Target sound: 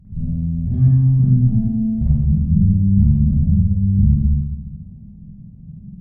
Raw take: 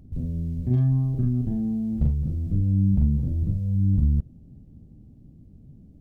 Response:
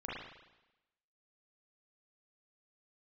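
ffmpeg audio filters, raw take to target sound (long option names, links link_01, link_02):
-filter_complex "[0:a]lowshelf=frequency=240:width_type=q:width=3:gain=8[link_01];[1:a]atrim=start_sample=2205,asetrate=33957,aresample=44100[link_02];[link_01][link_02]afir=irnorm=-1:irlink=0,volume=-3.5dB"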